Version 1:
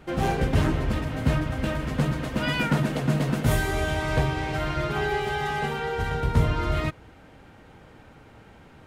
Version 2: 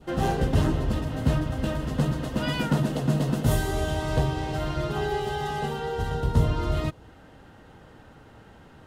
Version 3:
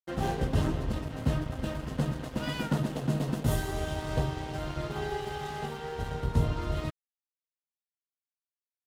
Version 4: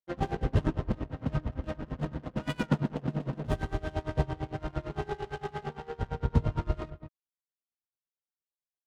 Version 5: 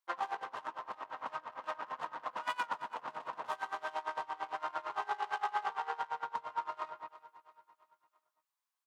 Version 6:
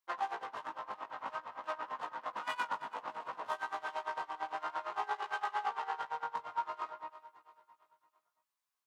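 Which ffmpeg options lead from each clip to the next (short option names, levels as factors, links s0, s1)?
-af "bandreject=f=2300:w=6.1,adynamicequalizer=threshold=0.00631:dfrequency=1700:dqfactor=1.2:tfrequency=1700:tqfactor=1.2:attack=5:release=100:ratio=0.375:range=3.5:mode=cutabove:tftype=bell"
-af "aeval=exprs='sgn(val(0))*max(abs(val(0))-0.0133,0)':c=same,volume=0.631"
-af "aecho=1:1:183:0.266,adynamicsmooth=sensitivity=8:basefreq=990,aeval=exprs='val(0)*pow(10,-23*(0.5-0.5*cos(2*PI*8.8*n/s))/20)':c=same,volume=1.58"
-af "acompressor=threshold=0.0178:ratio=5,highpass=f=1000:t=q:w=4,aecho=1:1:335|670|1005|1340:0.158|0.0792|0.0396|0.0198,volume=1.58"
-af "flanger=delay=16:depth=3.1:speed=0.56,volume=1.41"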